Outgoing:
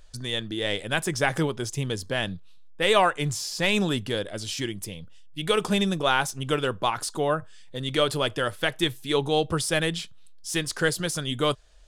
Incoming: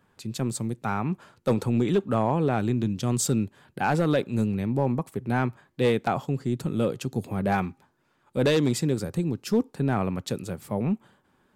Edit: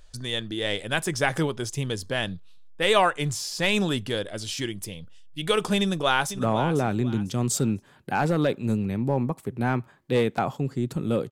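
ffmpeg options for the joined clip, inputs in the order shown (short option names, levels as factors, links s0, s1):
-filter_complex "[0:a]apad=whole_dur=11.31,atrim=end=11.31,atrim=end=6.392[s0];[1:a]atrim=start=2.078:end=7[s1];[s0][s1]acrossfade=d=0.004:c1=hsin:c2=hsin,asplit=2[s2][s3];[s3]afade=t=in:st=5.8:d=0.01,afade=t=out:st=6.39:d=0.01,aecho=0:1:500|1000|1500:0.266073|0.0798218|0.0239465[s4];[s2][s4]amix=inputs=2:normalize=0"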